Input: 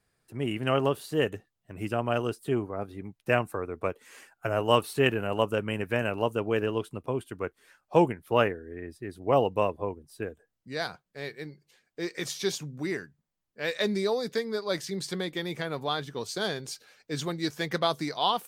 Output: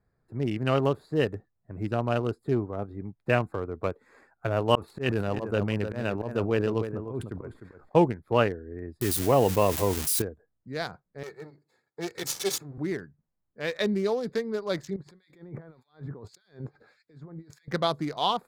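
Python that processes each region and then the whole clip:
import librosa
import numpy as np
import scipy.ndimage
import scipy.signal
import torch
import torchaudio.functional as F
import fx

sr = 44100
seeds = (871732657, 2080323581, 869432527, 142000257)

y = fx.chain(x, sr, fx.auto_swell(attack_ms=138.0),
    fx.echo_single(ms=303, db=-10.0),
    fx.sustainer(db_per_s=97.0), at=(4.75, 7.95))
y = fx.chain(y, sr, fx.crossing_spikes(level_db=-26.5),
    fx.env_flatten(amount_pct=50), at=(9.01, 10.22))
y = fx.chain(y, sr, fx.lower_of_two(delay_ms=2.3),
    fx.highpass(hz=120.0, slope=24),
    fx.high_shelf(hz=3100.0, db=10.0), at=(11.23, 12.78))
y = fx.chain(y, sr, fx.highpass(hz=52.0, slope=12),
    fx.over_compress(threshold_db=-43.0, ratio=-1.0),
    fx.harmonic_tremolo(hz=1.7, depth_pct=100, crossover_hz=2000.0), at=(14.96, 17.68))
y = fx.wiener(y, sr, points=15)
y = fx.low_shelf(y, sr, hz=170.0, db=6.5)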